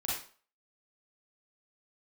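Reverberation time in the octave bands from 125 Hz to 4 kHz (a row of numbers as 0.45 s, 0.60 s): 0.35 s, 0.40 s, 0.40 s, 0.45 s, 0.40 s, 0.35 s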